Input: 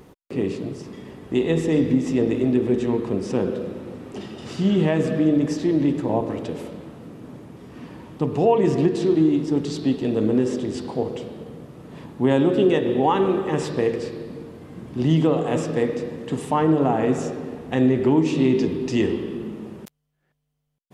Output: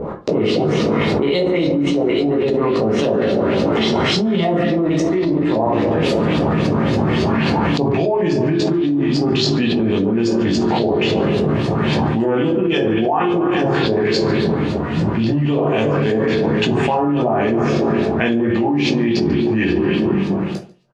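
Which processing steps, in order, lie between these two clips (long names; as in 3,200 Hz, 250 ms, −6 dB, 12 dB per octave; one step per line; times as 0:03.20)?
source passing by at 0:05.82, 33 m/s, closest 26 metres
high-shelf EQ 3,100 Hz +9.5 dB
mains-hum notches 60/120/180/240/300/360 Hz
in parallel at −12 dB: wave folding −19 dBFS
on the sum: auto-filter low-pass saw up 3.6 Hz 550–5,200 Hz
single-tap delay 144 ms −23.5 dB
convolution reverb RT60 0.30 s, pre-delay 7 ms, DRR −1.5 dB
envelope flattener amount 100%
level −6.5 dB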